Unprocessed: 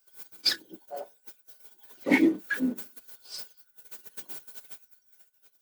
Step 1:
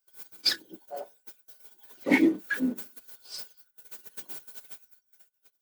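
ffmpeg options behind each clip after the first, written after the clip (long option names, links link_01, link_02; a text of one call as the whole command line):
ffmpeg -i in.wav -af "agate=range=-10dB:threshold=-59dB:ratio=16:detection=peak" out.wav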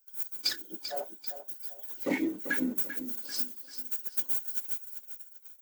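ffmpeg -i in.wav -af "acompressor=threshold=-28dB:ratio=6,aexciter=amount=2:drive=2.9:freq=6200,aecho=1:1:391|782|1173|1564:0.316|0.111|0.0387|0.0136,volume=1dB" out.wav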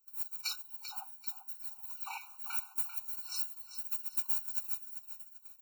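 ffmpeg -i in.wav -af "afftfilt=real='re*eq(mod(floor(b*sr/1024/750),2),1)':imag='im*eq(mod(floor(b*sr/1024/750),2),1)':win_size=1024:overlap=0.75,volume=1dB" out.wav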